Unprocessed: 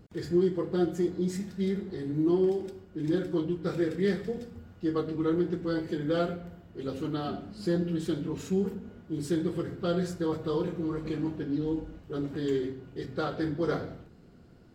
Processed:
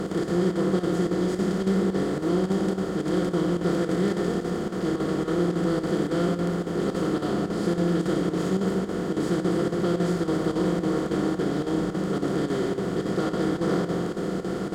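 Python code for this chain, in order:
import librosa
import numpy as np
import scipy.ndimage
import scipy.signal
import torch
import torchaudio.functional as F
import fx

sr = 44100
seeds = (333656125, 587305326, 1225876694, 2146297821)

p1 = fx.bin_compress(x, sr, power=0.2)
p2 = fx.peak_eq(p1, sr, hz=190.0, db=7.5, octaves=0.27)
p3 = p2 + fx.room_flutter(p2, sr, wall_m=10.8, rt60_s=0.44, dry=0)
p4 = fx.chopper(p3, sr, hz=3.6, depth_pct=60, duty_pct=85)
y = p4 * 10.0 ** (-5.5 / 20.0)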